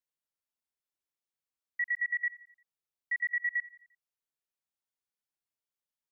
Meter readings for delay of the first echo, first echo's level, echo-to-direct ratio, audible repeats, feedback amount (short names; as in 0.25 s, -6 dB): 87 ms, -20.0 dB, -19.0 dB, 3, 50%